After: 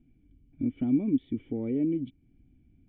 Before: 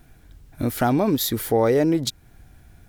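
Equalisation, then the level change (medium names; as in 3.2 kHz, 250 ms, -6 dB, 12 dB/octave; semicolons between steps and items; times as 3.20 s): cascade formant filter i; distance through air 380 m; 0.0 dB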